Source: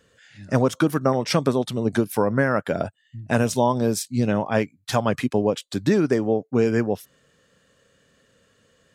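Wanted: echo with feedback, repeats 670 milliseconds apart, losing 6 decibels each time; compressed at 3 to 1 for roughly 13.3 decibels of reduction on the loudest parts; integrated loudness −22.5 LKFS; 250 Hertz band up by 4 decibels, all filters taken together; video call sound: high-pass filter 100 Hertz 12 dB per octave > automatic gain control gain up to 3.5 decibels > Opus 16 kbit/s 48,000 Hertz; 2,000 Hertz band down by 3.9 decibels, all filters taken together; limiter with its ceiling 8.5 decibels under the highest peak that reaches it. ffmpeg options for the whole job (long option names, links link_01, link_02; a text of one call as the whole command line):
ffmpeg -i in.wav -af "equalizer=frequency=250:width_type=o:gain=5,equalizer=frequency=2000:width_type=o:gain=-5.5,acompressor=threshold=-31dB:ratio=3,alimiter=limit=-24dB:level=0:latency=1,highpass=100,aecho=1:1:670|1340|2010|2680|3350|4020:0.501|0.251|0.125|0.0626|0.0313|0.0157,dynaudnorm=maxgain=3.5dB,volume=13dB" -ar 48000 -c:a libopus -b:a 16k out.opus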